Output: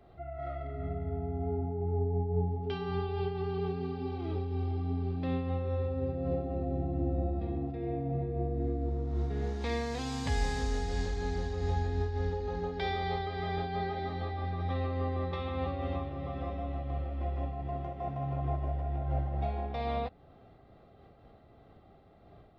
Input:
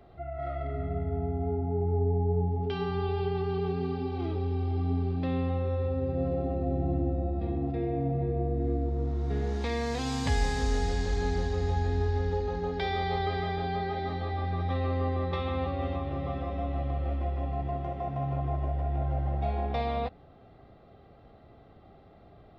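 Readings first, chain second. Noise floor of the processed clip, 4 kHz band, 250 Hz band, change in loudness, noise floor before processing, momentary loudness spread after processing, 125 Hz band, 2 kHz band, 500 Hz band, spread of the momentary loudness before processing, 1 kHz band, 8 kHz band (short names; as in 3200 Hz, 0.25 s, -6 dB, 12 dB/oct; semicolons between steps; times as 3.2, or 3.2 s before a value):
-58 dBFS, -3.5 dB, -3.5 dB, -3.5 dB, -55 dBFS, 5 LU, -3.5 dB, -3.5 dB, -3.5 dB, 4 LU, -3.5 dB, -4.0 dB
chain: noise-modulated level, depth 60%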